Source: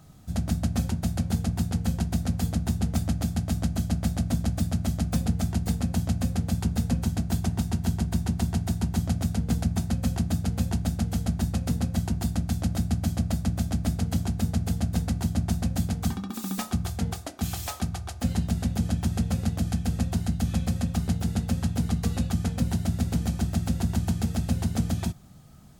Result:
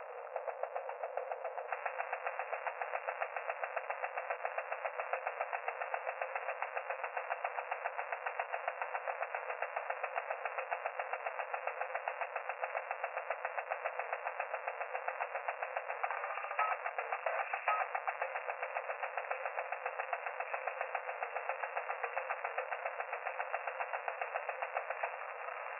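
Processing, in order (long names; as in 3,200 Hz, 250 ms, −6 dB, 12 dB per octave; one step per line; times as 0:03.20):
converter with a step at zero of −27.5 dBFS
tilt shelving filter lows +9 dB, about 680 Hz, from 0:01.67 lows −3 dB
pitch vibrato 0.56 Hz 11 cents
linear-phase brick-wall band-pass 470–2,800 Hz
level −1.5 dB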